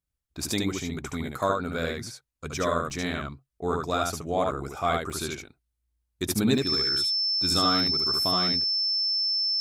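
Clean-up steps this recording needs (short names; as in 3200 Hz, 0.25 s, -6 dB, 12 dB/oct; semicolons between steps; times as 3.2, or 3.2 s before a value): notch 5300 Hz, Q 30; interpolate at 0.5/2.9/4.51/5.1/6.58, 3.2 ms; inverse comb 72 ms -3 dB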